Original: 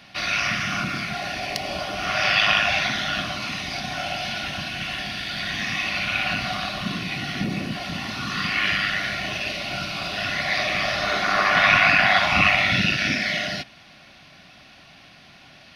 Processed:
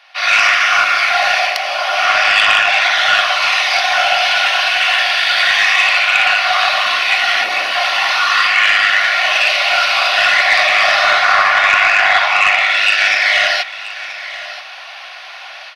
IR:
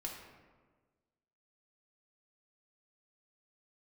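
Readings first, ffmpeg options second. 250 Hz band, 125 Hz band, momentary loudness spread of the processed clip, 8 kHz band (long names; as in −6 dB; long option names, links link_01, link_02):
below −10 dB, below −15 dB, 15 LU, +10.0 dB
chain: -filter_complex "[0:a]highpass=frequency=720:width=0.5412,highpass=frequency=720:width=1.3066,highshelf=frequency=4800:gain=-11,dynaudnorm=framelen=140:gausssize=3:maxgain=16dB,asoftclip=type=tanh:threshold=-5.5dB,asplit=2[link_01][link_02];[link_02]aecho=0:1:981:0.178[link_03];[link_01][link_03]amix=inputs=2:normalize=0,volume=4dB"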